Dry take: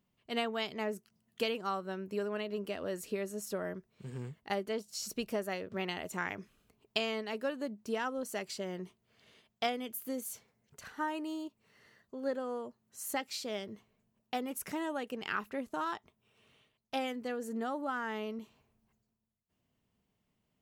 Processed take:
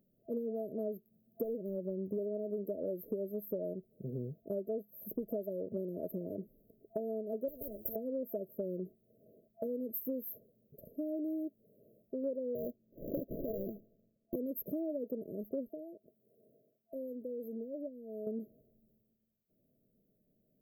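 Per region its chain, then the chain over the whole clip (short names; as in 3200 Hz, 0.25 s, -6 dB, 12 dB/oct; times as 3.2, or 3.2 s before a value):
1.44–2.19 overloaded stage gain 30 dB + bell 65 Hz +10 dB 2.3 oct
7.48–7.96 minimum comb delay 4.3 ms + HPF 54 Hz + spectral compressor 10:1
12.55–14.36 transient shaper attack -1 dB, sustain +11 dB + sample-rate reducer 1100 Hz + upward expander, over -54 dBFS
15.69–18.27 HPF 220 Hz 6 dB/oct + compressor 1.5:1, threshold -59 dBFS
whole clip: FFT band-reject 670–12000 Hz; bell 68 Hz -12.5 dB 1.7 oct; compressor 4:1, threshold -43 dBFS; gain +8 dB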